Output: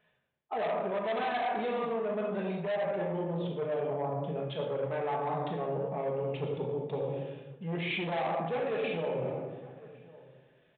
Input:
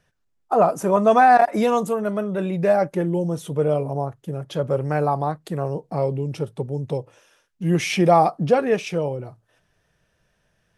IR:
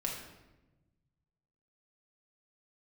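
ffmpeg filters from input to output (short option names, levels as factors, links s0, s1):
-filter_complex "[1:a]atrim=start_sample=2205,asetrate=40572,aresample=44100[s0];[0:a][s0]afir=irnorm=-1:irlink=0,aresample=8000,asoftclip=type=tanh:threshold=0.178,aresample=44100,highpass=f=480:p=1,equalizer=f=1400:w=3.2:g=-5.5,asplit=2[s1][s2];[s2]adelay=1108,volume=0.0447,highshelf=f=4000:g=-24.9[s3];[s1][s3]amix=inputs=2:normalize=0,areverse,acompressor=threshold=0.0316:ratio=6,areverse"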